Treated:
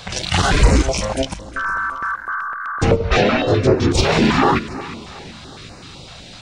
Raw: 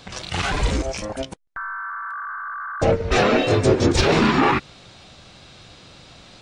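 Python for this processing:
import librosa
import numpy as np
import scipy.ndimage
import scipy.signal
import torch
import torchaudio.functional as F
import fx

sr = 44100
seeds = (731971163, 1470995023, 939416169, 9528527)

y = fx.lowpass(x, sr, hz=4800.0, slope=12, at=(2.96, 3.92))
y = fx.echo_feedback(y, sr, ms=365, feedback_pct=43, wet_db=-17)
y = fx.rider(y, sr, range_db=5, speed_s=2.0)
y = fx.filter_held_notch(y, sr, hz=7.9, low_hz=300.0, high_hz=3300.0)
y = y * 10.0 ** (5.0 / 20.0)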